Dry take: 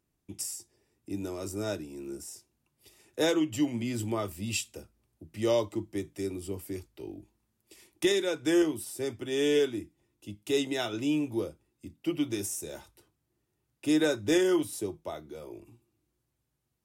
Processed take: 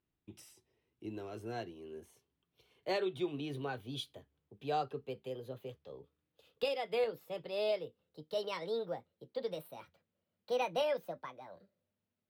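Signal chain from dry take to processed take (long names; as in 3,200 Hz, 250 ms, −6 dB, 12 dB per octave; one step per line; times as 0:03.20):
gliding playback speed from 103% → 171%
high shelf with overshoot 5,000 Hz −13.5 dB, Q 1.5
level −8 dB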